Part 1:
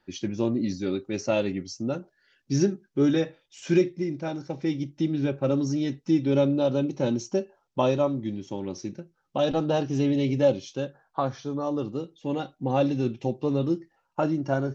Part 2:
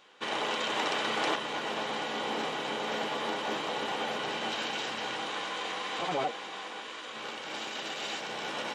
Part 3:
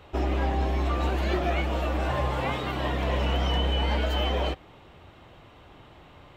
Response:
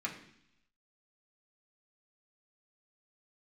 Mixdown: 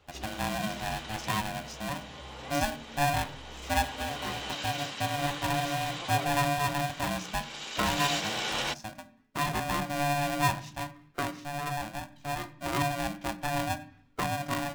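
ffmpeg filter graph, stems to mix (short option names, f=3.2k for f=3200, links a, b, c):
-filter_complex "[0:a]aeval=exprs='val(0)*sgn(sin(2*PI*430*n/s))':c=same,volume=-8dB,asplit=3[a][b][c];[b]volume=-7.5dB[d];[1:a]highshelf=f=2.7k:g=11.5,afade=t=in:st=3.58:d=0.65:silence=0.375837,afade=t=in:st=7.59:d=0.6:silence=0.375837[e];[2:a]volume=-13dB[f];[c]apad=whole_len=280844[g];[f][g]sidechaincompress=threshold=-43dB:ratio=8:attack=6.8:release=729[h];[3:a]atrim=start_sample=2205[i];[d][i]afir=irnorm=-1:irlink=0[j];[a][e][h][j]amix=inputs=4:normalize=0"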